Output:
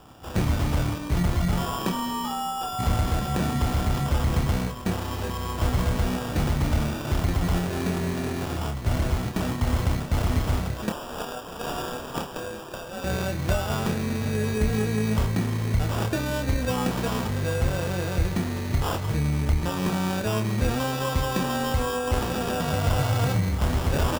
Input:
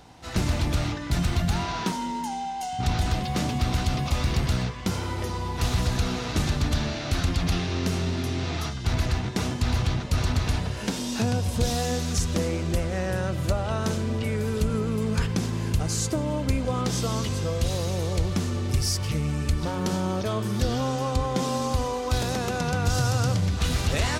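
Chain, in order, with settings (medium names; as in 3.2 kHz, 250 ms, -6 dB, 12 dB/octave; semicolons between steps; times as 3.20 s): 10.89–13.04 s: high-pass 720 Hz 12 dB/octave; sample-and-hold 21×; doubling 28 ms -7 dB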